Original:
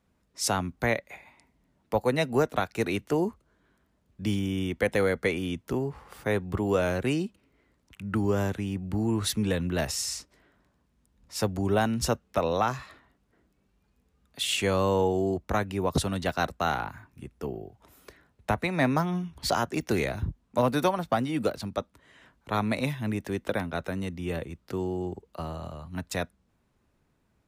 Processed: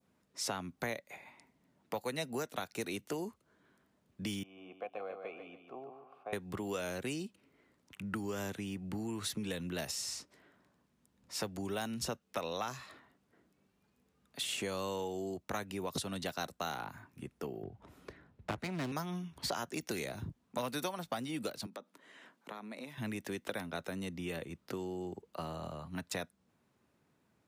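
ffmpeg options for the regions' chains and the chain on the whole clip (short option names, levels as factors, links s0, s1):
-filter_complex "[0:a]asettb=1/sr,asplit=3[s0][s1][s2];[s0]atrim=end=4.434[s3];[s1]atrim=start=4.43:end=6.33,asetpts=PTS-STARTPTS,afade=t=in:d=0.004:c=qsin,afade=t=out:st=1.896:d=0.004:c=qsin,asplit=3[s4][s5][s6];[s4]bandpass=f=730:t=q:w=8,volume=1[s7];[s5]bandpass=f=1090:t=q:w=8,volume=0.501[s8];[s6]bandpass=f=2440:t=q:w=8,volume=0.355[s9];[s7][s8][s9]amix=inputs=3:normalize=0,equalizer=f=7700:w=0.45:g=-10,aecho=1:1:144|288|432|576:0.422|0.139|0.0459|0.0152,atrim=end_sample=83790[s10];[s2]atrim=start=6.326[s11];[s3][s10]acrossfade=d=0.004:c1=hsin:c2=qsin[s12];[s12][s11]acrossfade=d=0.004:c1=qsin:c2=hsin,asettb=1/sr,asplit=3[s13][s14][s15];[s13]atrim=end=17.634[s16];[s14]atrim=start=17.63:end=18.92,asetpts=PTS-STARTPTS,afade=t=in:d=0.004:c=qsin,afade=t=out:st=1.286:d=0.004:c=qsin,aemphasis=mode=reproduction:type=bsi,aeval=exprs='clip(val(0),-1,0.0237)':c=same[s17];[s15]atrim=start=18.916[s18];[s16][s17]acrossfade=d=0.004:c1=hsin:c2=qsin[s19];[s19][s18]acrossfade=d=0.004:c1=qsin:c2=hsin,asettb=1/sr,asplit=3[s20][s21][s22];[s20]atrim=end=21.664[s23];[s21]atrim=start=21.66:end=22.98,asetpts=PTS-STARTPTS,afade=t=in:d=0.004:c=qsin,afade=t=out:st=1.316:d=0.004:c=qsin,acompressor=threshold=0.0112:ratio=16:attack=3.2:release=140:knee=1:detection=peak,highpass=f=190:w=0.5412,highpass=f=190:w=1.3066[s24];[s22]atrim=start=22.976[s25];[s23][s24]acrossfade=d=0.004:c1=hsin:c2=qsin[s26];[s26][s25]acrossfade=d=0.004:c1=qsin:c2=hsin,highpass=130,adynamicequalizer=threshold=0.00631:dfrequency=1900:dqfactor=0.86:tfrequency=1900:tqfactor=0.86:attack=5:release=100:ratio=0.375:range=2.5:mode=cutabove:tftype=bell,acrossover=split=1600|4200[s27][s28][s29];[s27]acompressor=threshold=0.0141:ratio=4[s30];[s28]acompressor=threshold=0.00708:ratio=4[s31];[s29]acompressor=threshold=0.01:ratio=4[s32];[s30][s31][s32]amix=inputs=3:normalize=0,volume=0.891"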